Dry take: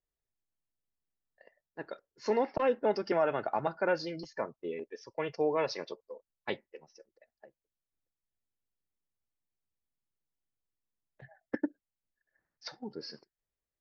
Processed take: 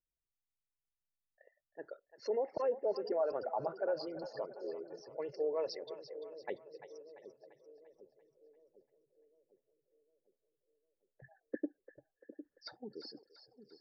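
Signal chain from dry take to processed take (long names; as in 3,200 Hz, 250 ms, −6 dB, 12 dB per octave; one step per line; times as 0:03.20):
spectral envelope exaggerated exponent 2
echo with a time of its own for lows and highs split 510 Hz, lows 754 ms, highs 343 ms, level −11.5 dB
level −5.5 dB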